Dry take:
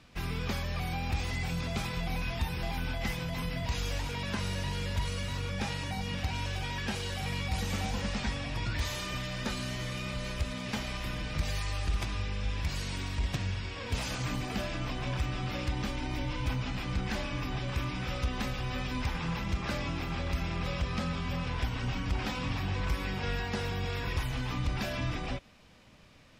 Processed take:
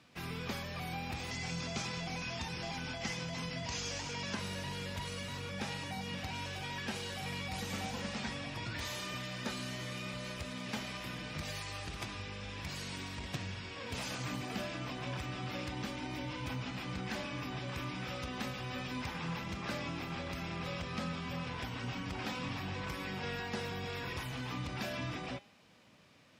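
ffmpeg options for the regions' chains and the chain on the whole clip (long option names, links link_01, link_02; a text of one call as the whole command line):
ffmpeg -i in.wav -filter_complex "[0:a]asettb=1/sr,asplit=3[link_01][link_02][link_03];[link_01]atrim=end=1.314[link_04];[link_02]atrim=start=1.31:end=4.35,asetpts=PTS-STARTPTS,afade=type=in:duration=0.004:curve=qsin,afade=type=out:start_time=3.036:duration=0.004:curve=qsin,lowpass=frequency=6400:width_type=q:width=2.5,bandreject=frequency=3800:width=19[link_05];[link_03]atrim=start=4.346[link_06];[link_04][link_05]acrossfade=duration=0.004:curve1=hsin:curve2=qsin[link_07];[link_07][link_06]acrossfade=duration=0.004:curve1=qsin:curve2=hsin,highpass=130,bandreject=frequency=202.6:width_type=h:width=4,bandreject=frequency=405.2:width_type=h:width=4,bandreject=frequency=607.8:width_type=h:width=4,bandreject=frequency=810.4:width_type=h:width=4,bandreject=frequency=1013:width_type=h:width=4,bandreject=frequency=1215.6:width_type=h:width=4,bandreject=frequency=1418.2:width_type=h:width=4,bandreject=frequency=1620.8:width_type=h:width=4,bandreject=frequency=1823.4:width_type=h:width=4,bandreject=frequency=2026:width_type=h:width=4,bandreject=frequency=2228.6:width_type=h:width=4,bandreject=frequency=2431.2:width_type=h:width=4,bandreject=frequency=2633.8:width_type=h:width=4,bandreject=frequency=2836.4:width_type=h:width=4,bandreject=frequency=3039:width_type=h:width=4,bandreject=frequency=3241.6:width_type=h:width=4,bandreject=frequency=3444.2:width_type=h:width=4,bandreject=frequency=3646.8:width_type=h:width=4,bandreject=frequency=3849.4:width_type=h:width=4,bandreject=frequency=4052:width_type=h:width=4,bandreject=frequency=4254.6:width_type=h:width=4,bandreject=frequency=4457.2:width_type=h:width=4,bandreject=frequency=4659.8:width_type=h:width=4,bandreject=frequency=4862.4:width_type=h:width=4,bandreject=frequency=5065:width_type=h:width=4,bandreject=frequency=5267.6:width_type=h:width=4,bandreject=frequency=5470.2:width_type=h:width=4,bandreject=frequency=5672.8:width_type=h:width=4,bandreject=frequency=5875.4:width_type=h:width=4,bandreject=frequency=6078:width_type=h:width=4,bandreject=frequency=6280.6:width_type=h:width=4,bandreject=frequency=6483.2:width_type=h:width=4,bandreject=frequency=6685.8:width_type=h:width=4,bandreject=frequency=6888.4:width_type=h:width=4,bandreject=frequency=7091:width_type=h:width=4,bandreject=frequency=7293.6:width_type=h:width=4,bandreject=frequency=7496.2:width_type=h:width=4,bandreject=frequency=7698.8:width_type=h:width=4,volume=-3.5dB" out.wav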